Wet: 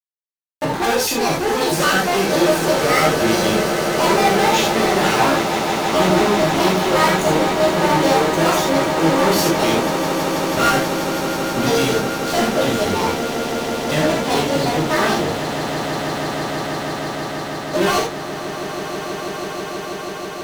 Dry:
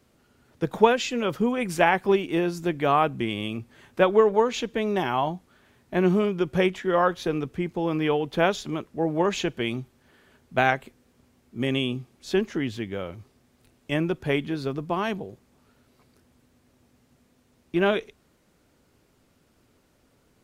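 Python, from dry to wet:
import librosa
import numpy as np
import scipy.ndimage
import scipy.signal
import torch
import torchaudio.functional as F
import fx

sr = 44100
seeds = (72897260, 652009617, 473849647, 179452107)

p1 = fx.pitch_trill(x, sr, semitones=10.0, every_ms=107)
p2 = fx.fuzz(p1, sr, gain_db=32.0, gate_db=-39.0)
p3 = p2 + fx.echo_swell(p2, sr, ms=162, loudest=8, wet_db=-12.5, dry=0)
p4 = fx.rev_gated(p3, sr, seeds[0], gate_ms=110, shape='flat', drr_db=-3.5)
y = p4 * librosa.db_to_amplitude(-6.5)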